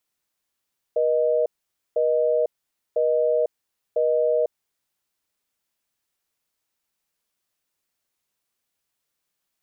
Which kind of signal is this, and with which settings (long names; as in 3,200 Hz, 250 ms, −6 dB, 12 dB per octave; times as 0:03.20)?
call progress tone busy tone, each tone −20.5 dBFS 3.80 s